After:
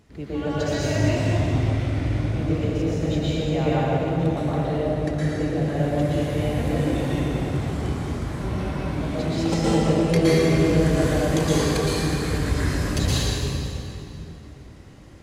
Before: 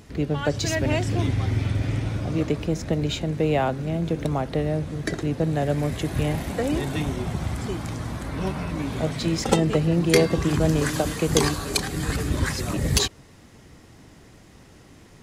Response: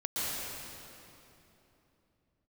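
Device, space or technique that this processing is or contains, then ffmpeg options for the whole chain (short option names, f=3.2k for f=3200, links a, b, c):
swimming-pool hall: -filter_complex "[1:a]atrim=start_sample=2205[a];[0:a][a]afir=irnorm=-1:irlink=0,highshelf=f=5.7k:g=-5,volume=-6.5dB"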